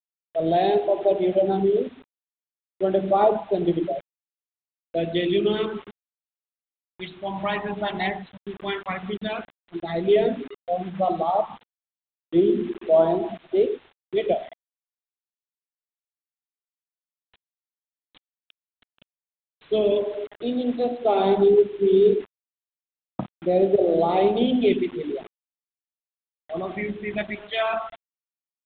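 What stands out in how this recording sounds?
phasing stages 2, 0.1 Hz, lowest notch 470–2100 Hz; a quantiser's noise floor 8-bit, dither none; µ-law

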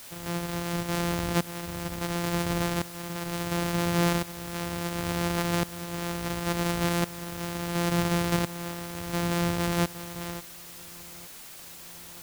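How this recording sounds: a buzz of ramps at a fixed pitch in blocks of 256 samples; tremolo saw up 0.71 Hz, depth 90%; a quantiser's noise floor 8-bit, dither triangular

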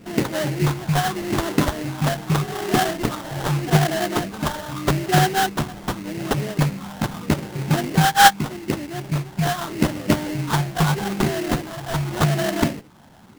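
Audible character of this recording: phasing stages 6, 0.82 Hz, lowest notch 370–2700 Hz; aliases and images of a low sample rate 2.4 kHz, jitter 20%

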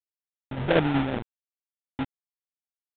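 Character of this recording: a quantiser's noise floor 6-bit, dither none; tremolo saw down 5.3 Hz, depth 55%; aliases and images of a low sample rate 1.1 kHz, jitter 20%; G.726

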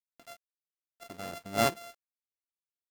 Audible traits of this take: a buzz of ramps at a fixed pitch in blocks of 64 samples; chopped level 1.5 Hz, depth 65%, duty 55%; a quantiser's noise floor 10-bit, dither none

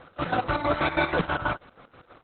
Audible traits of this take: a quantiser's noise floor 12-bit, dither none; chopped level 6.2 Hz, depth 65%, duty 50%; Opus

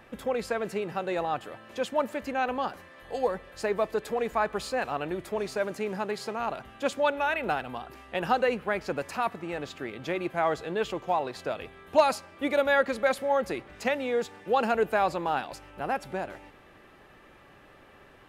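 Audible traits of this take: noise floor -55 dBFS; spectral tilt -3.0 dB/octave

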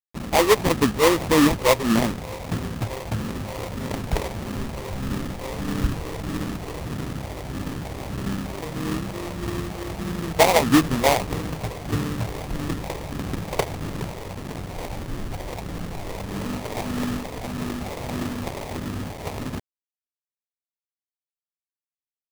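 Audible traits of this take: a quantiser's noise floor 6-bit, dither none; phasing stages 4, 1.6 Hz, lowest notch 210–1100 Hz; aliases and images of a low sample rate 1.5 kHz, jitter 20%

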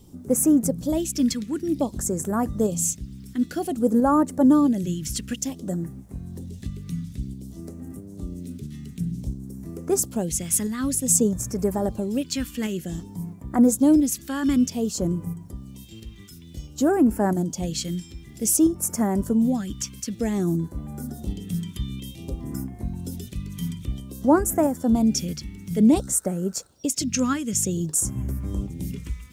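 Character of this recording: phasing stages 2, 0.54 Hz, lowest notch 670–3400 Hz; a quantiser's noise floor 12-bit, dither none; tremolo saw up 1.5 Hz, depth 35%

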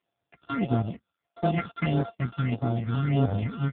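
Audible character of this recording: a buzz of ramps at a fixed pitch in blocks of 64 samples; phasing stages 6, 1.6 Hz, lowest notch 550–2500 Hz; AMR-NB

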